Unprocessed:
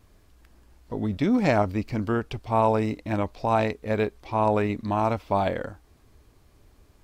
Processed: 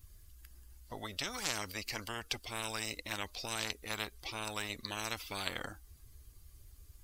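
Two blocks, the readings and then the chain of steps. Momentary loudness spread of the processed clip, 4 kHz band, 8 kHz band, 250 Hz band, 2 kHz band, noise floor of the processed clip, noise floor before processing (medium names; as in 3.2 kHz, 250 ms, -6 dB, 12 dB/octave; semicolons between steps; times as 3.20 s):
22 LU, +5.5 dB, no reading, -22.0 dB, -5.0 dB, -60 dBFS, -59 dBFS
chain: expander on every frequency bin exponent 1.5; peaking EQ 430 Hz -6 dB 2.9 oct; spectrum-flattening compressor 10:1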